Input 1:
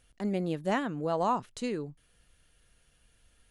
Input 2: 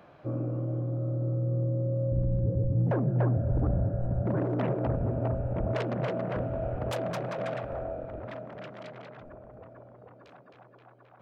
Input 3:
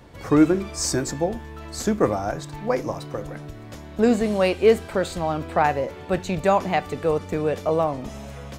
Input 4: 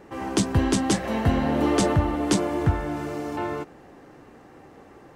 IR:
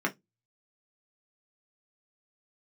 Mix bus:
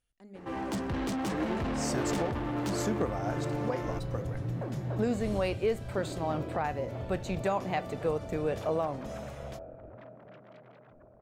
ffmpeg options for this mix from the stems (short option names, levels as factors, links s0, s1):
-filter_complex "[0:a]bandreject=f=205.9:t=h:w=4,bandreject=f=411.8:t=h:w=4,bandreject=f=617.7:t=h:w=4,bandreject=f=823.6:t=h:w=4,bandreject=f=1029.5:t=h:w=4,bandreject=f=1235.4:t=h:w=4,bandreject=f=1441.3:t=h:w=4,bandreject=f=1647.2:t=h:w=4,bandreject=f=1853.1:t=h:w=4,bandreject=f=2059:t=h:w=4,bandreject=f=2264.9:t=h:w=4,bandreject=f=2470.8:t=h:w=4,bandreject=f=2676.7:t=h:w=4,bandreject=f=2882.6:t=h:w=4,bandreject=f=3088.5:t=h:w=4,bandreject=f=3294.4:t=h:w=4,bandreject=f=3500.3:t=h:w=4,bandreject=f=3706.2:t=h:w=4,bandreject=f=3912.1:t=h:w=4,bandreject=f=4118:t=h:w=4,bandreject=f=4323.9:t=h:w=4,bandreject=f=4529.8:t=h:w=4,bandreject=f=4735.7:t=h:w=4,bandreject=f=4941.6:t=h:w=4,bandreject=f=5147.5:t=h:w=4,bandreject=f=5353.4:t=h:w=4,bandreject=f=5559.3:t=h:w=4,volume=0.126,asplit=2[s0][s1];[1:a]highshelf=f=3100:g=-10,adelay=1700,volume=0.355[s2];[2:a]adelay=1000,volume=0.422[s3];[3:a]highshelf=f=6800:g=-11.5,asoftclip=type=tanh:threshold=0.0376,adelay=350,volume=0.841[s4];[s1]apad=whole_len=422916[s5];[s3][s5]sidechaincompress=threshold=0.002:ratio=8:attack=16:release=527[s6];[s0][s2][s6][s4]amix=inputs=4:normalize=0,alimiter=limit=0.106:level=0:latency=1:release=356"